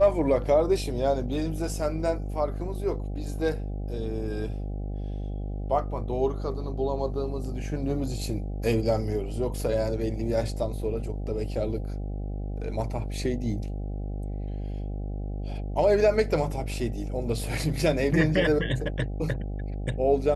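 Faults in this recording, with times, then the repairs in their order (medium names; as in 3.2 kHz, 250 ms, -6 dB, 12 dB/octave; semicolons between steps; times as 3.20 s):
buzz 50 Hz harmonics 16 -32 dBFS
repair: de-hum 50 Hz, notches 16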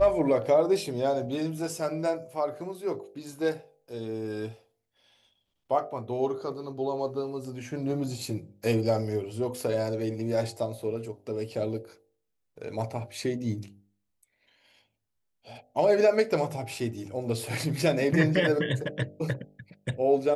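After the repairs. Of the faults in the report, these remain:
nothing left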